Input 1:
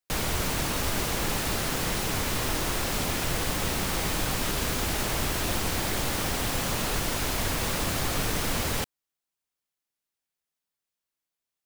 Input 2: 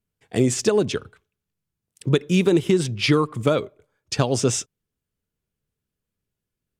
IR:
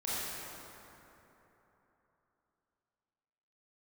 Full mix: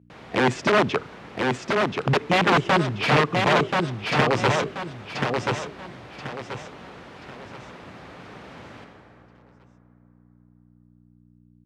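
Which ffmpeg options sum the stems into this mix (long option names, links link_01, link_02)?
-filter_complex "[0:a]volume=-15.5dB,asplit=2[link_01][link_02];[link_02]volume=-6dB[link_03];[1:a]aeval=exprs='(mod(5.31*val(0)+1,2)-1)/5.31':channel_layout=same,volume=3dB,asplit=2[link_04][link_05];[link_05]volume=-3.5dB[link_06];[2:a]atrim=start_sample=2205[link_07];[link_03][link_07]afir=irnorm=-1:irlink=0[link_08];[link_06]aecho=0:1:1032|2064|3096|4128|5160:1|0.34|0.116|0.0393|0.0134[link_09];[link_01][link_04][link_08][link_09]amix=inputs=4:normalize=0,aeval=exprs='val(0)+0.00398*(sin(2*PI*60*n/s)+sin(2*PI*2*60*n/s)/2+sin(2*PI*3*60*n/s)/3+sin(2*PI*4*60*n/s)/4+sin(2*PI*5*60*n/s)/5)':channel_layout=same,highpass=130,lowpass=2600"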